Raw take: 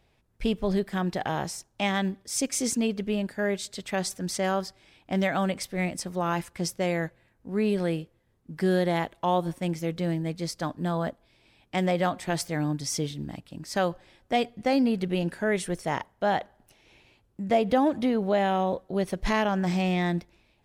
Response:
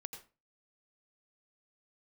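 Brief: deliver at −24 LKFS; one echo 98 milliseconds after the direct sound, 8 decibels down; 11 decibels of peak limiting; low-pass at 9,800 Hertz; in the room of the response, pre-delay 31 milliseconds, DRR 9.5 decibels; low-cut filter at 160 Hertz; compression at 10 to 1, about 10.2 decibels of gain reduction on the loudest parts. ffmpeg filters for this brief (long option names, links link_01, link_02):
-filter_complex "[0:a]highpass=160,lowpass=9800,acompressor=threshold=-28dB:ratio=10,alimiter=level_in=4dB:limit=-24dB:level=0:latency=1,volume=-4dB,aecho=1:1:98:0.398,asplit=2[link_01][link_02];[1:a]atrim=start_sample=2205,adelay=31[link_03];[link_02][link_03]afir=irnorm=-1:irlink=0,volume=-6dB[link_04];[link_01][link_04]amix=inputs=2:normalize=0,volume=12.5dB"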